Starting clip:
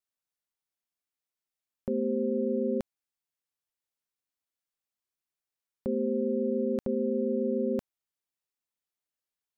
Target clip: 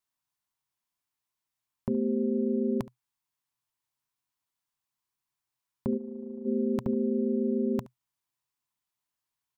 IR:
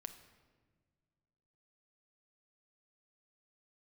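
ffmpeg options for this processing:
-filter_complex "[0:a]equalizer=f=125:t=o:w=0.33:g=11,equalizer=f=500:t=o:w=0.33:g=-12,equalizer=f=1k:t=o:w=0.33:g=9,aecho=1:1:71:0.1,asplit=3[a][b][c];[a]afade=t=out:st=5.96:d=0.02[d];[b]agate=range=-33dB:threshold=-21dB:ratio=3:detection=peak,afade=t=in:st=5.96:d=0.02,afade=t=out:st=6.45:d=0.02[e];[c]afade=t=in:st=6.45:d=0.02[f];[d][e][f]amix=inputs=3:normalize=0,volume=3dB"

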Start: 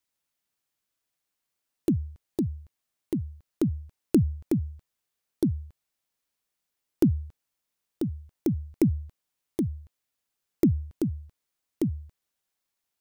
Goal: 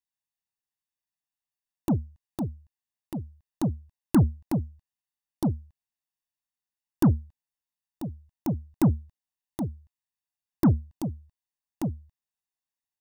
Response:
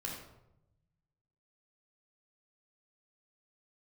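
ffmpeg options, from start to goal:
-af "aecho=1:1:1.1:0.87,aeval=exprs='0.335*(cos(1*acos(clip(val(0)/0.335,-1,1)))-cos(1*PI/2))+0.0376*(cos(7*acos(clip(val(0)/0.335,-1,1)))-cos(7*PI/2))':c=same,volume=-1dB"

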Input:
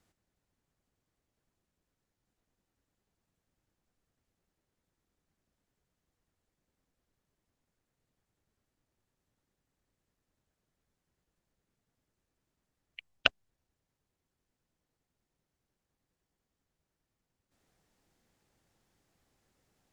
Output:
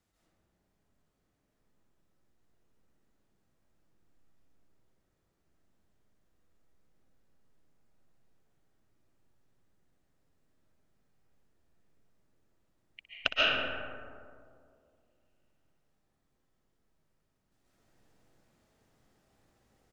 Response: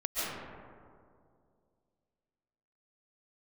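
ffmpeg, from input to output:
-filter_complex "[0:a]aecho=1:1:62|124|186|248|310|372:0.237|0.128|0.0691|0.0373|0.0202|0.0109[a];[1:a]atrim=start_sample=2205[b];[a][b]afir=irnorm=-1:irlink=0,volume=-3dB"

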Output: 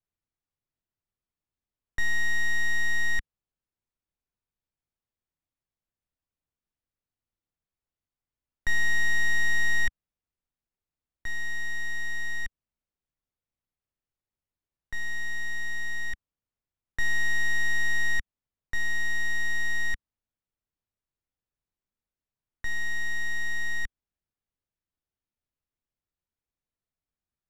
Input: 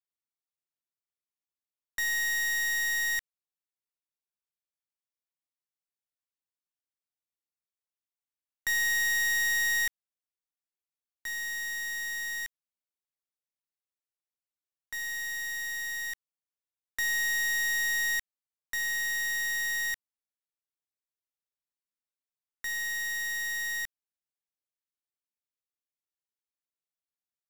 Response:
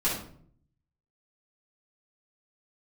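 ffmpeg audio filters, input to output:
-af "aemphasis=mode=reproduction:type=riaa,volume=3dB"

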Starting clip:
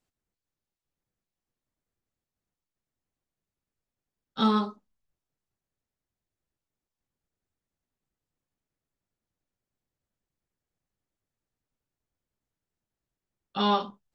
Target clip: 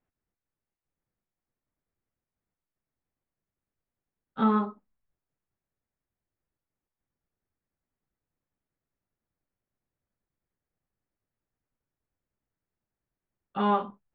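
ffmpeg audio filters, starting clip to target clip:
-af "lowpass=f=2.3k:w=0.5412,lowpass=f=2.3k:w=1.3066"

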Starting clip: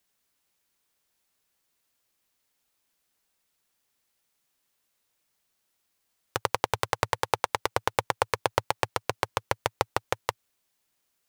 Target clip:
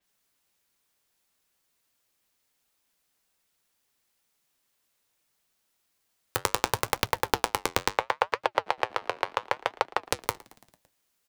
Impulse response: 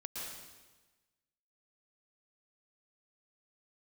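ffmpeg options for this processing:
-filter_complex "[0:a]asettb=1/sr,asplit=3[a][b][c];[a]atrim=end=7.974[d];[b]atrim=start=7.97:end=10.06,asetpts=PTS-STARTPTS,afade=t=in:d=0.004:c=qsin,afade=t=out:st=2.086:d=0.004:c=qsin,acrossover=split=380 4700:gain=0.158 1 0.251[e][f][g];[e][f][g]amix=inputs=3:normalize=0[h];[c]atrim=start=10.056[i];[d][h]acrossfade=d=0.004:c1=hsin:c2=qsin[j];[j][i]acrossfade=d=0.004:c1=qsin:c2=hsin,aeval=exprs='(mod(1.78*val(0)+1,2)-1)/1.78':c=same,flanger=delay=3.5:depth=8.5:regen=-69:speed=0.71:shape=triangular,asplit=6[k][l][m][n][o][p];[l]adelay=112,afreqshift=-77,volume=-23dB[q];[m]adelay=224,afreqshift=-154,volume=-26.9dB[r];[n]adelay=336,afreqshift=-231,volume=-30.8dB[s];[o]adelay=448,afreqshift=-308,volume=-34.6dB[t];[p]adelay=560,afreqshift=-385,volume=-38.5dB[u];[k][q][r][s][t][u]amix=inputs=6:normalize=0,adynamicequalizer=threshold=0.00224:dfrequency=5300:dqfactor=0.7:tfrequency=5300:tqfactor=0.7:attack=5:release=100:ratio=0.375:range=2.5:mode=cutabove:tftype=highshelf,volume=5.5dB"

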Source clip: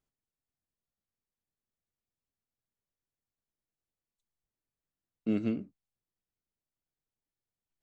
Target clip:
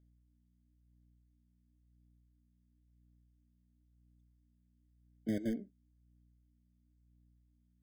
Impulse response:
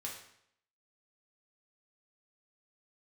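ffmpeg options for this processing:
-filter_complex "[0:a]acrossover=split=180|1100[a][b][c];[a]acrusher=bits=5:mix=0:aa=0.000001[d];[d][b][c]amix=inputs=3:normalize=0,aeval=exprs='val(0)+0.000562*(sin(2*PI*60*n/s)+sin(2*PI*2*60*n/s)/2+sin(2*PI*3*60*n/s)/3+sin(2*PI*4*60*n/s)/4+sin(2*PI*5*60*n/s)/5)':c=same,aphaser=in_gain=1:out_gain=1:delay=5:decay=0.36:speed=0.97:type=sinusoidal,afftfilt=real='re*eq(mod(floor(b*sr/1024/750),2),0)':imag='im*eq(mod(floor(b*sr/1024/750),2),0)':win_size=1024:overlap=0.75,volume=-5dB"

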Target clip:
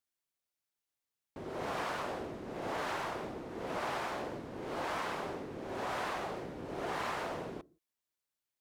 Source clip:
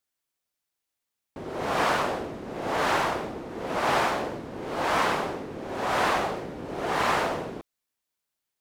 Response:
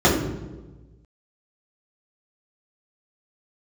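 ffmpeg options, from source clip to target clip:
-filter_complex "[0:a]acompressor=threshold=-27dB:ratio=6,asplit=2[a][b];[1:a]atrim=start_sample=2205,afade=t=out:st=0.24:d=0.01,atrim=end_sample=11025,asetrate=48510,aresample=44100[c];[b][c]afir=irnorm=-1:irlink=0,volume=-46dB[d];[a][d]amix=inputs=2:normalize=0,volume=-6.5dB"

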